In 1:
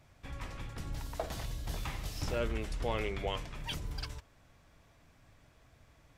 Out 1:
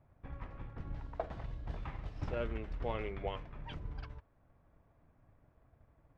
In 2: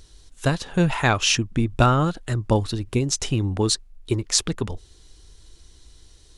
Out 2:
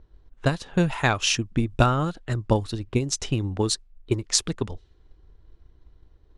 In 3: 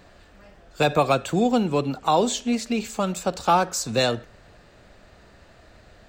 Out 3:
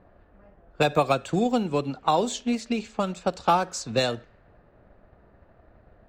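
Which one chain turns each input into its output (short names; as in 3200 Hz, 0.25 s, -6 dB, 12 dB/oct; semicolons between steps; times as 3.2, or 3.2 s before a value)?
transient shaper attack +4 dB, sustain -2 dB; low-pass opened by the level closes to 1100 Hz, open at -17.5 dBFS; gain -4 dB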